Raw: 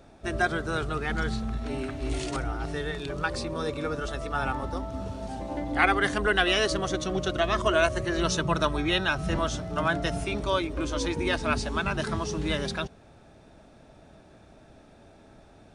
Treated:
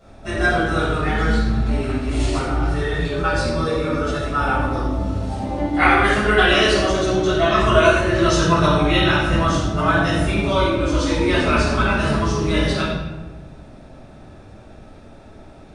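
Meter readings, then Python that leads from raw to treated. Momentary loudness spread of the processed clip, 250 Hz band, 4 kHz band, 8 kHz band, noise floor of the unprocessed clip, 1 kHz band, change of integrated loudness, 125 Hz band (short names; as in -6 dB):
8 LU, +10.5 dB, +7.5 dB, +6.0 dB, -54 dBFS, +9.5 dB, +9.5 dB, +11.5 dB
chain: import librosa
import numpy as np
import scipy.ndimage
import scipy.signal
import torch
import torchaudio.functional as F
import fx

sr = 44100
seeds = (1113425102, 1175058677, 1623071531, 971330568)

y = fx.room_shoebox(x, sr, seeds[0], volume_m3=620.0, walls='mixed', distance_m=6.8)
y = F.gain(torch.from_numpy(y), -5.0).numpy()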